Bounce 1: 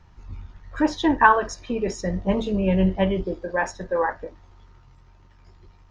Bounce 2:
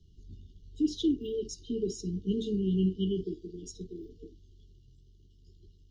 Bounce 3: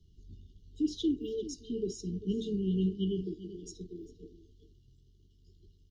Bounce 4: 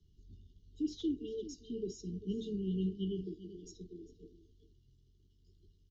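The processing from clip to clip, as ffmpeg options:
-filter_complex "[0:a]afftfilt=real='re*(1-between(b*sr/4096,460,2800))':imag='im*(1-between(b*sr/4096,460,2800))':win_size=4096:overlap=0.75,acrossover=split=110[a][b];[a]acompressor=threshold=-42dB:ratio=6[c];[c][b]amix=inputs=2:normalize=0,volume=-6dB"
-filter_complex "[0:a]asplit=2[a][b];[b]adelay=396.5,volume=-14dB,highshelf=f=4k:g=-8.92[c];[a][c]amix=inputs=2:normalize=0,volume=-2.5dB"
-filter_complex "[0:a]acrossover=split=110|2000[a][b][c];[c]asoftclip=type=tanh:threshold=-39dB[d];[a][b][d]amix=inputs=3:normalize=0,aresample=16000,aresample=44100,volume=-5dB"

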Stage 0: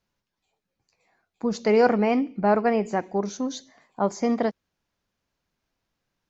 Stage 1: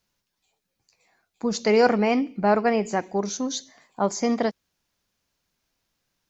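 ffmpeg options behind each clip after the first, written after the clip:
-af "highshelf=f=3.2k:g=10"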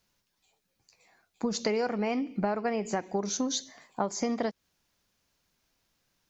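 -af "acompressor=threshold=-27dB:ratio=16,volume=1.5dB"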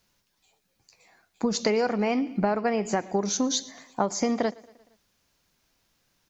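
-af "aecho=1:1:116|232|348|464:0.0708|0.0404|0.023|0.0131,volume=4.5dB"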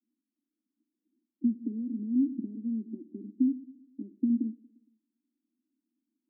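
-af "asuperpass=centerf=270:order=8:qfactor=2.6,volume=1.5dB"

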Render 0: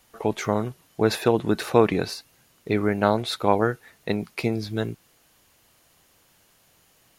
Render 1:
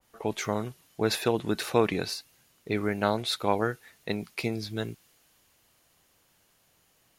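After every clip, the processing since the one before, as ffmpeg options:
-af "adynamicequalizer=threshold=0.0112:dfrequency=1800:dqfactor=0.7:tfrequency=1800:tqfactor=0.7:attack=5:release=100:ratio=0.375:range=3:mode=boostabove:tftype=highshelf,volume=-6dB"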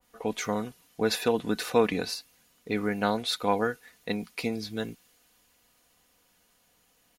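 -af "aecho=1:1:4.1:0.52,volume=-1dB"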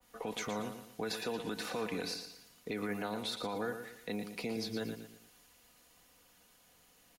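-filter_complex "[0:a]acrossover=split=120|380|930|7700[a][b][c][d][e];[a]acompressor=threshold=-59dB:ratio=4[f];[b]acompressor=threshold=-40dB:ratio=4[g];[c]acompressor=threshold=-39dB:ratio=4[h];[d]acompressor=threshold=-41dB:ratio=4[i];[e]acompressor=threshold=-56dB:ratio=4[j];[f][g][h][i][j]amix=inputs=5:normalize=0,alimiter=level_in=5.5dB:limit=-24dB:level=0:latency=1:release=34,volume=-5.5dB,asplit=2[k][l];[l]aecho=0:1:116|232|348|464:0.376|0.139|0.0515|0.019[m];[k][m]amix=inputs=2:normalize=0,volume=1dB"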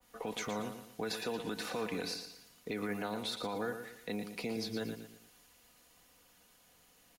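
-af "acrusher=bits=9:mode=log:mix=0:aa=0.000001"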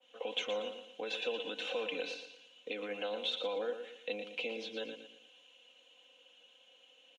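-af "aexciter=amount=1.2:drive=4.4:freq=2.6k,highpass=490,equalizer=f=520:t=q:w=4:g=7,equalizer=f=810:t=q:w=4:g=-5,equalizer=f=1.2k:t=q:w=4:g=-9,equalizer=f=1.9k:t=q:w=4:g=-7,equalizer=f=2.9k:t=q:w=4:g=9,equalizer=f=4.6k:t=q:w=4:g=-5,lowpass=f=4.8k:w=0.5412,lowpass=f=4.8k:w=1.3066,aecho=1:1:3.8:0.55"

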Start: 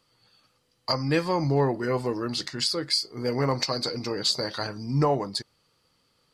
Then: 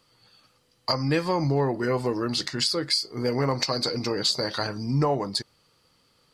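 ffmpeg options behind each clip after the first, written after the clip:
-af "acompressor=threshold=-27dB:ratio=2,volume=4dB"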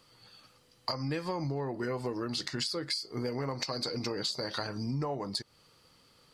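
-af "acompressor=threshold=-33dB:ratio=6,volume=1.5dB"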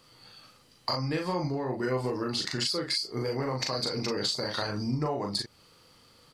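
-filter_complex "[0:a]asplit=2[a][b];[b]adelay=39,volume=-3dB[c];[a][c]amix=inputs=2:normalize=0,volume=2.5dB"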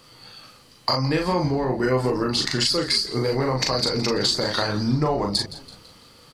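-filter_complex "[0:a]asplit=5[a][b][c][d][e];[b]adelay=166,afreqshift=-100,volume=-16dB[f];[c]adelay=332,afreqshift=-200,volume=-22.4dB[g];[d]adelay=498,afreqshift=-300,volume=-28.8dB[h];[e]adelay=664,afreqshift=-400,volume=-35.1dB[i];[a][f][g][h][i]amix=inputs=5:normalize=0,volume=8dB"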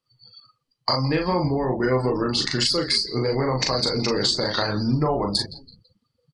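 -af "afftdn=nr=32:nf=-38"

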